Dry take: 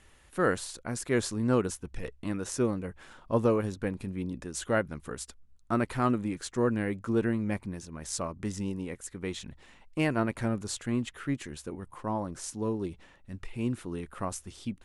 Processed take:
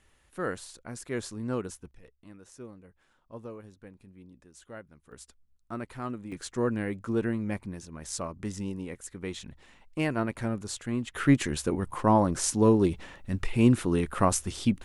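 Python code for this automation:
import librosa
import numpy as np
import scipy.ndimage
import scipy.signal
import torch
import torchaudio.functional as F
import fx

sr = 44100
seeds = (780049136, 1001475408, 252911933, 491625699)

y = fx.gain(x, sr, db=fx.steps((0.0, -6.0), (1.91, -17.0), (5.12, -9.0), (6.32, -1.0), (11.15, 10.5)))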